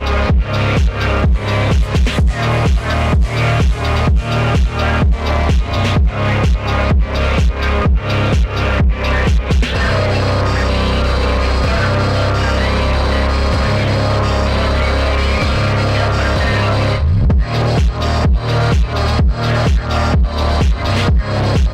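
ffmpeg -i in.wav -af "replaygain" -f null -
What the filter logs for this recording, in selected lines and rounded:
track_gain = +0.2 dB
track_peak = 0.335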